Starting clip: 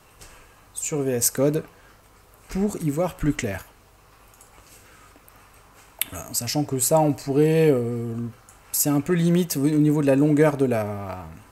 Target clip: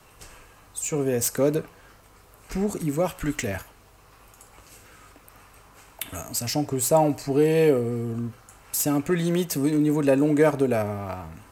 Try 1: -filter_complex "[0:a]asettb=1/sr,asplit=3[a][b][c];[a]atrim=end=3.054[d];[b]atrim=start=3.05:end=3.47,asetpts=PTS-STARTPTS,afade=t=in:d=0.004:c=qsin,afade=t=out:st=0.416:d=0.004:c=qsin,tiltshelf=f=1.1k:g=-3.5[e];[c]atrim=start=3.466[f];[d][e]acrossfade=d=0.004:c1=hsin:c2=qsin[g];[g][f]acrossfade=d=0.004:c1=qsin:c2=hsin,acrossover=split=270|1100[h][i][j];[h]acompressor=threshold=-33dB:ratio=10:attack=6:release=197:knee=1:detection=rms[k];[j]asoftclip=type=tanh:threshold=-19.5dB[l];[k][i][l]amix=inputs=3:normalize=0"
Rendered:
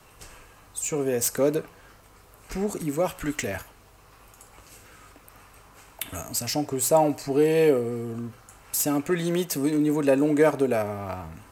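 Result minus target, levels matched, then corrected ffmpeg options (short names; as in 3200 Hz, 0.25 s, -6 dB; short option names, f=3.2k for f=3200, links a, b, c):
compressor: peak gain reduction +6.5 dB
-filter_complex "[0:a]asettb=1/sr,asplit=3[a][b][c];[a]atrim=end=3.054[d];[b]atrim=start=3.05:end=3.47,asetpts=PTS-STARTPTS,afade=t=in:d=0.004:c=qsin,afade=t=out:st=0.416:d=0.004:c=qsin,tiltshelf=f=1.1k:g=-3.5[e];[c]atrim=start=3.466[f];[d][e]acrossfade=d=0.004:c1=hsin:c2=qsin[g];[g][f]acrossfade=d=0.004:c1=qsin:c2=hsin,acrossover=split=270|1100[h][i][j];[h]acompressor=threshold=-26dB:ratio=10:attack=6:release=197:knee=1:detection=rms[k];[j]asoftclip=type=tanh:threshold=-19.5dB[l];[k][i][l]amix=inputs=3:normalize=0"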